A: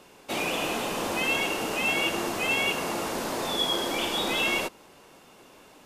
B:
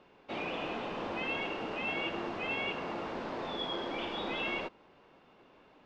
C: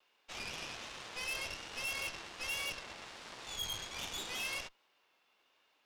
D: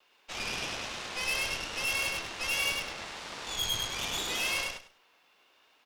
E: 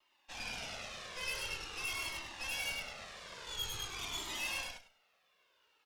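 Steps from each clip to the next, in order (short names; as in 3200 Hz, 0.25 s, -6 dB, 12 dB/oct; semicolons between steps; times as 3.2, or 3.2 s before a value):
Bessel low-pass 2700 Hz, order 4; gain -7 dB
vibrato 1.3 Hz 42 cents; differentiator; added harmonics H 7 -28 dB, 8 -13 dB, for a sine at -34.5 dBFS; gain +6 dB
feedback echo 0.101 s, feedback 20%, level -3 dB; gain +6.5 dB
cascading flanger falling 0.47 Hz; gain -3.5 dB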